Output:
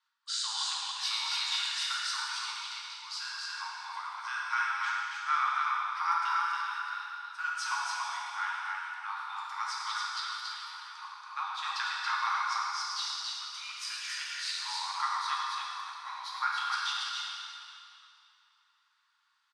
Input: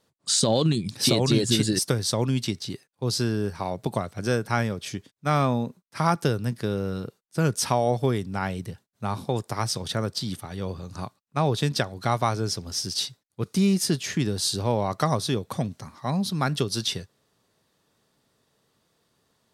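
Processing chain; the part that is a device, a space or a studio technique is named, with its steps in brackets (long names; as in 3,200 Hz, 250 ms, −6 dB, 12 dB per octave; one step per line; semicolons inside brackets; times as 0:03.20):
station announcement (band-pass filter 450–4,500 Hz; parametric band 1,400 Hz +6 dB 0.27 octaves; loudspeakers that aren't time-aligned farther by 37 metres −11 dB, 96 metres −3 dB; convolution reverb RT60 2.8 s, pre-delay 3 ms, DRR −4.5 dB)
Butterworth high-pass 920 Hz 72 dB per octave
level −8.5 dB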